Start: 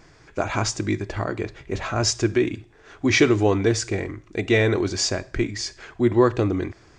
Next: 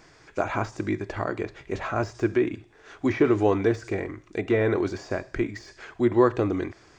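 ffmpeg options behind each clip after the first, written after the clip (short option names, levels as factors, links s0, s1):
-filter_complex "[0:a]deesser=0.85,lowshelf=f=200:g=-8,acrossover=split=2100[s0][s1];[s1]acompressor=threshold=0.00447:ratio=6[s2];[s0][s2]amix=inputs=2:normalize=0"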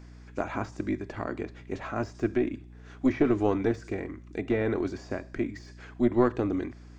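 -af "equalizer=f=250:w=2.7:g=8.5,aeval=exprs='val(0)+0.01*(sin(2*PI*60*n/s)+sin(2*PI*2*60*n/s)/2+sin(2*PI*3*60*n/s)/3+sin(2*PI*4*60*n/s)/4+sin(2*PI*5*60*n/s)/5)':c=same,aeval=exprs='0.531*(cos(1*acos(clip(val(0)/0.531,-1,1)))-cos(1*PI/2))+0.106*(cos(2*acos(clip(val(0)/0.531,-1,1)))-cos(2*PI/2))':c=same,volume=0.473"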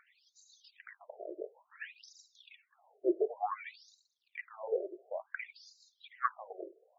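-af "aphaser=in_gain=1:out_gain=1:delay=2.3:decay=0.69:speed=0.96:type=triangular,afftfilt=real='re*between(b*sr/1024,470*pow(5400/470,0.5+0.5*sin(2*PI*0.56*pts/sr))/1.41,470*pow(5400/470,0.5+0.5*sin(2*PI*0.56*pts/sr))*1.41)':imag='im*between(b*sr/1024,470*pow(5400/470,0.5+0.5*sin(2*PI*0.56*pts/sr))/1.41,470*pow(5400/470,0.5+0.5*sin(2*PI*0.56*pts/sr))*1.41)':win_size=1024:overlap=0.75,volume=0.75"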